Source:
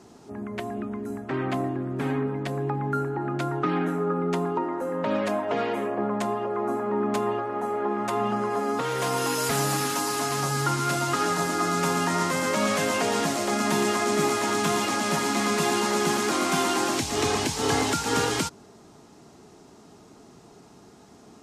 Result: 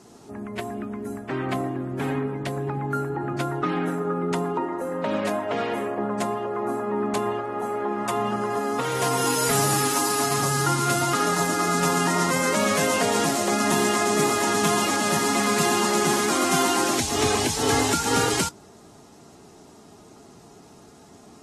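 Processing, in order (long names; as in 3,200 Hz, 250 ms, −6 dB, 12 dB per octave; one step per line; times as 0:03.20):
high-shelf EQ 8,200 Hz +10 dB
AAC 32 kbit/s 44,100 Hz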